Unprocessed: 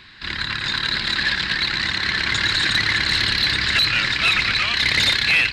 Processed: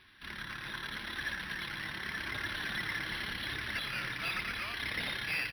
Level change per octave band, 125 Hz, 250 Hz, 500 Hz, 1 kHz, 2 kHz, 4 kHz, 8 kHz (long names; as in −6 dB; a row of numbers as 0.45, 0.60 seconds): −16.0, −13.5, −13.0, −14.0, −16.5, −21.5, −19.0 decibels